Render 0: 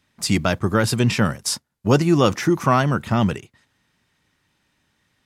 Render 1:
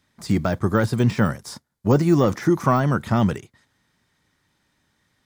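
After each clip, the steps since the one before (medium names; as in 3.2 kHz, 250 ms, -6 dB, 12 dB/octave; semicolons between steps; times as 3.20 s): de-esser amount 80%; peaking EQ 2.7 kHz -7 dB 0.31 oct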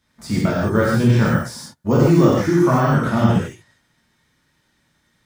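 gated-style reverb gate 180 ms flat, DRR -6.5 dB; trim -3.5 dB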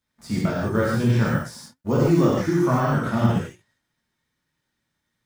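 companding laws mixed up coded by A; flange 0.5 Hz, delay 1.7 ms, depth 8.8 ms, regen +83%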